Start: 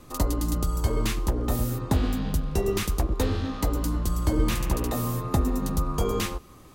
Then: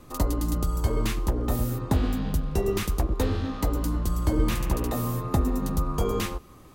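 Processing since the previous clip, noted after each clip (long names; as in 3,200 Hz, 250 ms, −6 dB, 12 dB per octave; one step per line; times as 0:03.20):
parametric band 6,400 Hz −3 dB 2.5 octaves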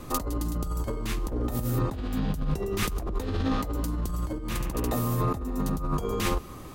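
compressor whose output falls as the input rises −31 dBFS, ratio −1
level +2.5 dB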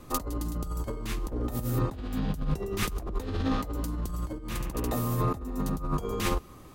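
expander for the loud parts 1.5 to 1, over −37 dBFS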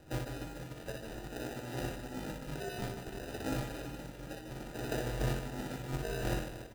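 resonant band-pass 900 Hz, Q 0.99
decimation without filtering 40×
on a send: reverse bouncing-ball delay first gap 60 ms, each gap 1.5×, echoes 5
on the sum: level −1 dB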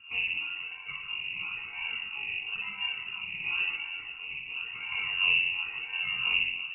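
all-pass phaser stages 12, 0.97 Hz, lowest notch 250–1,500 Hz
rectangular room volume 590 cubic metres, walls furnished, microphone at 2.5 metres
voice inversion scrambler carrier 2,800 Hz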